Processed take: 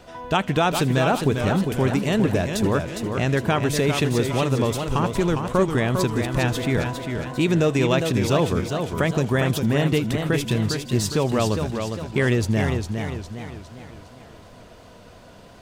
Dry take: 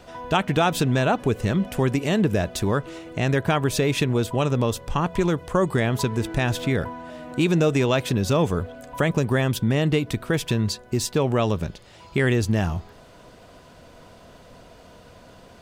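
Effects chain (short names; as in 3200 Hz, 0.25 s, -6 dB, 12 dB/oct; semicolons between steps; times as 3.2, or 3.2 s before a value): thin delay 80 ms, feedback 81%, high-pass 3800 Hz, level -18 dB; warbling echo 0.405 s, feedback 46%, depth 116 cents, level -6 dB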